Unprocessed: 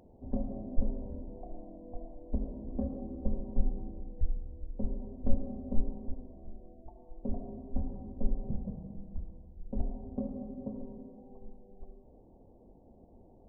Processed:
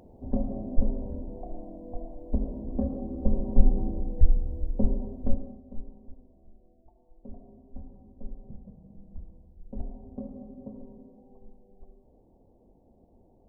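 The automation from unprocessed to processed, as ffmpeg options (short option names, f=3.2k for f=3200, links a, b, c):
-af "volume=18dB,afade=t=in:st=3.1:d=0.75:silence=0.501187,afade=t=out:st=4.65:d=0.69:silence=0.298538,afade=t=out:st=5.34:d=0.28:silence=0.316228,afade=t=in:st=8.77:d=0.43:silence=0.473151"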